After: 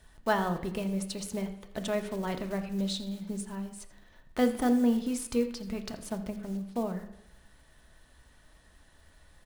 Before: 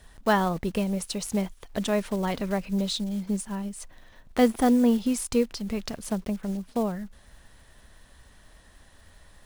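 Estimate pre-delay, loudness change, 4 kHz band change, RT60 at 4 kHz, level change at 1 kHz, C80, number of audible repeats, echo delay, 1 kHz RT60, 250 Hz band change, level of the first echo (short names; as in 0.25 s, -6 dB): 3 ms, -5.0 dB, -5.5 dB, 0.90 s, -5.5 dB, 12.5 dB, 1, 83 ms, 0.85 s, -5.0 dB, -17.5 dB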